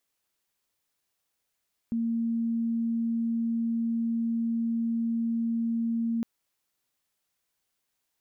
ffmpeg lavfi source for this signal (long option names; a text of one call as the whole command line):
ffmpeg -f lavfi -i "sine=frequency=230:duration=4.31:sample_rate=44100,volume=-6.94dB" out.wav